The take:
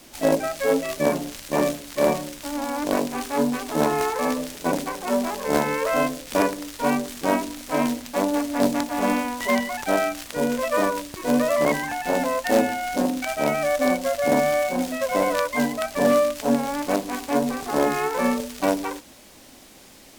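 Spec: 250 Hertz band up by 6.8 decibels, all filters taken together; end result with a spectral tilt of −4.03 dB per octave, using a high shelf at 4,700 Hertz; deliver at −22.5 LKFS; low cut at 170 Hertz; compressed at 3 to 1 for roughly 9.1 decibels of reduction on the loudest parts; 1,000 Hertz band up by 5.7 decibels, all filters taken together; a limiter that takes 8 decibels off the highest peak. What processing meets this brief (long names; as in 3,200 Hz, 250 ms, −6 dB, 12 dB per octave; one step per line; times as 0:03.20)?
high-pass filter 170 Hz
parametric band 250 Hz +8 dB
parametric band 1,000 Hz +6.5 dB
high-shelf EQ 4,700 Hz +5.5 dB
downward compressor 3 to 1, threshold −22 dBFS
level +3.5 dB
brickwall limiter −11 dBFS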